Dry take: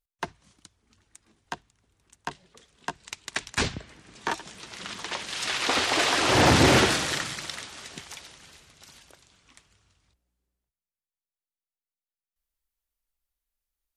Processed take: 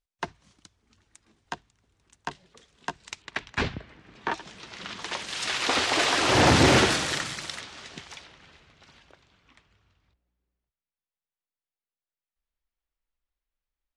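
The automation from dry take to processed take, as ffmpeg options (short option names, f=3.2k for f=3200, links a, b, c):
-af "asetnsamples=n=441:p=0,asendcmd='3.22 lowpass f 3100;4.33 lowpass f 5200;5.02 lowpass f 9900;7.6 lowpass f 5400;8.24 lowpass f 3200',lowpass=7.6k"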